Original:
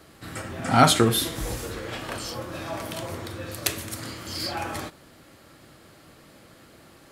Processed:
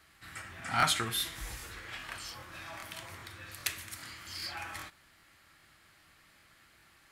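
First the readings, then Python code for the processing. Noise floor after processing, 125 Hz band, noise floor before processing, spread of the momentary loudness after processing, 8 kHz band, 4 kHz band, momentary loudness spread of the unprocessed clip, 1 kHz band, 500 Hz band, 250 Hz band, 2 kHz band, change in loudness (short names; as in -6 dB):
-63 dBFS, -16.0 dB, -53 dBFS, 18 LU, -9.0 dB, -7.5 dB, 17 LU, -10.5 dB, -19.0 dB, -20.0 dB, -5.0 dB, -10.0 dB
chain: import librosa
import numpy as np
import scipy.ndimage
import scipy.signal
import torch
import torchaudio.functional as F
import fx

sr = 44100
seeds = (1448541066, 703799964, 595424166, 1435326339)

y = fx.graphic_eq_10(x, sr, hz=(125, 250, 500, 2000), db=(-6, -8, -12, 6))
y = fx.buffer_crackle(y, sr, first_s=0.78, period_s=0.4, block=1024, kind='repeat')
y = F.gain(torch.from_numpy(y), -9.0).numpy()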